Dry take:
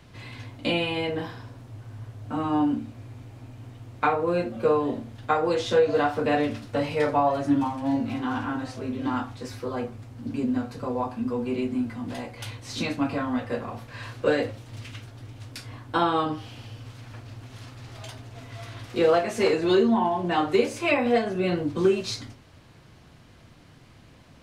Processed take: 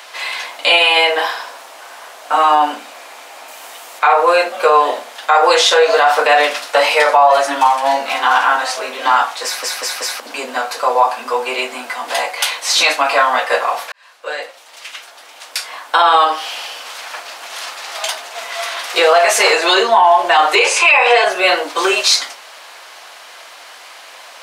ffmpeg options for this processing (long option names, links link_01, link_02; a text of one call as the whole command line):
ffmpeg -i in.wav -filter_complex "[0:a]asettb=1/sr,asplit=3[link_01][link_02][link_03];[link_01]atrim=end=3.484[link_04];[link_02]atrim=start=3.48:end=3.99,asetpts=PTS-STARTPTS,afade=type=in:duration=0.004:curve=qsin,afade=type=out:start_time=0.506:duration=0.004:curve=qsin,highshelf=frequency=7300:gain=10[link_05];[link_03]atrim=start=3.986[link_06];[link_04][link_05]acrossfade=duration=0.004:curve1=hsin:curve2=qsin[link_07];[link_07][link_06]acrossfade=duration=0.004:curve1=qsin:curve2=hsin,asettb=1/sr,asplit=3[link_08][link_09][link_10];[link_08]atrim=end=20.554[link_11];[link_09]atrim=start=20.55:end=21.24,asetpts=PTS-STARTPTS,afade=type=in:duration=0.004:curve=qsin,afade=type=out:start_time=0.686:duration=0.004:curve=qsin,highpass=frequency=330:width=0.5412,highpass=frequency=330:width=1.3066,equalizer=frequency=420:width_type=q:width=4:gain=8,equalizer=frequency=620:width_type=q:width=4:gain=-6,equalizer=frequency=930:width_type=q:width=4:gain=6,equalizer=frequency=2600:width_type=q:width=4:gain=9,lowpass=frequency=9400:width=0.5412,lowpass=frequency=9400:width=1.3066[link_12];[link_10]atrim=start=21.236[link_13];[link_11][link_12]acrossfade=duration=0.004:curve1=hsin:curve2=qsin[link_14];[link_14][link_13]acrossfade=duration=0.004:curve1=qsin:curve2=hsin,asplit=6[link_15][link_16][link_17][link_18][link_19][link_20];[link_15]atrim=end=9.632[link_21];[link_16]atrim=start=9.438:end=9.632[link_22];[link_17]atrim=start=9.438:end=9.632[link_23];[link_18]atrim=start=9.438:end=9.632[link_24];[link_19]atrim=start=10.198:end=13.92,asetpts=PTS-STARTPTS,afade=type=out:start_time=3.718:duration=0.004:curve=hsin[link_25];[link_20]atrim=start=13.92,asetpts=PTS-STARTPTS,afade=type=in:duration=2.69[link_26];[link_21][link_22]acrossfade=duration=0.004:curve1=hsin:curve2=hsin[link_27];[link_27][link_23]acrossfade=duration=0.004:curve1=hsin:curve2=hsin[link_28];[link_28][link_24]acrossfade=duration=0.004:curve1=hsin:curve2=hsin[link_29];[link_25][link_26]concat=n=2:v=0:a=1[link_30];[link_29][link_30]acrossfade=duration=0.004:curve1=hsin:curve2=hsin,highpass=frequency=650:width=0.5412,highpass=frequency=650:width=1.3066,highshelf=frequency=6200:gain=4,alimiter=level_in=22.5dB:limit=-1dB:release=50:level=0:latency=1,volume=-1dB" out.wav